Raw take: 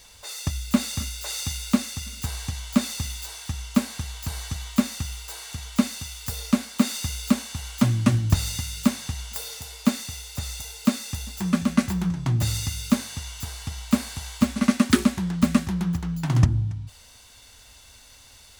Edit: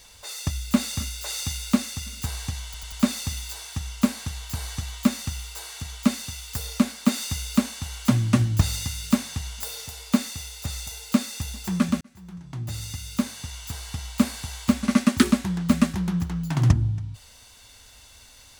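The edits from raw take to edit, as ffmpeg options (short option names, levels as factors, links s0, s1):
-filter_complex "[0:a]asplit=5[s0][s1][s2][s3][s4];[s0]atrim=end=2.742[s5];[s1]atrim=start=2.648:end=2.742[s6];[s2]atrim=start=2.648:end=2.742[s7];[s3]atrim=start=2.648:end=11.74,asetpts=PTS-STARTPTS,afade=t=out:st=9.088:d=0.004:c=hsin[s8];[s4]atrim=start=11.74,asetpts=PTS-STARTPTS,afade=t=in:d=1.83[s9];[s5][s6]acrossfade=d=0.004:c1=hsin:c2=hsin[s10];[s10][s7]acrossfade=d=0.004:c1=hsin:c2=hsin[s11];[s8][s9]concat=n=2:v=0:a=1[s12];[s11][s12]acrossfade=d=0.004:c1=hsin:c2=hsin"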